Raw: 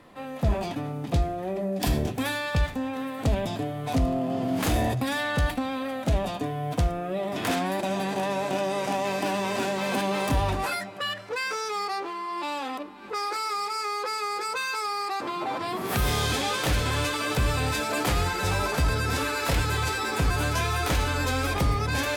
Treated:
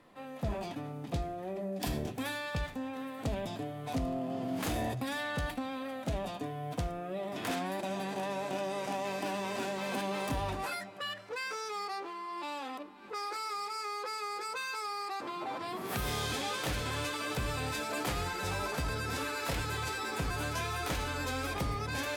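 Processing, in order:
parametric band 63 Hz −5.5 dB 1.4 octaves
level −8 dB

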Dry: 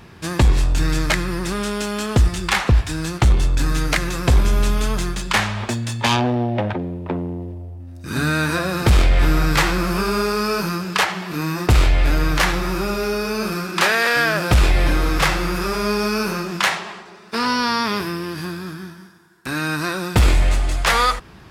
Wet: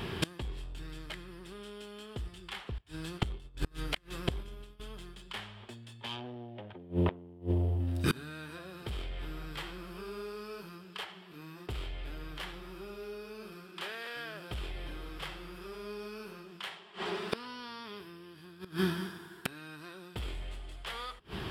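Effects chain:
0:02.78–0:04.80: noise gate −14 dBFS, range −20 dB
thirty-one-band graphic EQ 400 Hz +7 dB, 3,150 Hz +11 dB, 6,300 Hz −9 dB
gate with flip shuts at −20 dBFS, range −29 dB
level +3.5 dB

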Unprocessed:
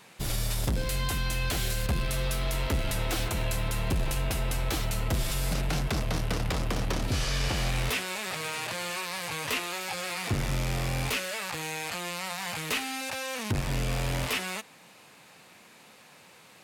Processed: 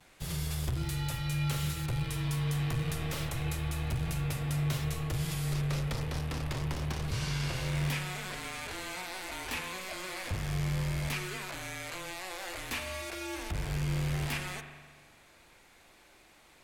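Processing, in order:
pitch vibrato 0.32 Hz 18 cents
frequency shifter −190 Hz
spring reverb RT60 1.5 s, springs 41 ms, chirp 80 ms, DRR 5.5 dB
level −6.5 dB

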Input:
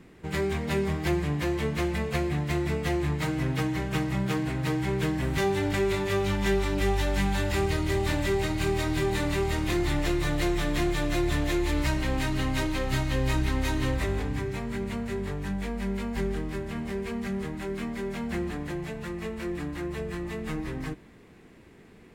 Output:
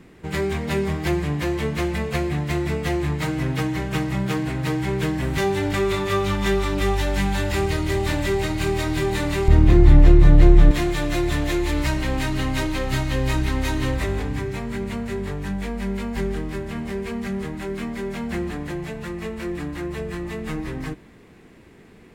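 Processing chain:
0:05.75–0:06.94: hollow resonant body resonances 1,200/3,600 Hz, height 11 dB → 8 dB
0:09.48–0:10.71: spectral tilt −3.5 dB per octave
level +4 dB

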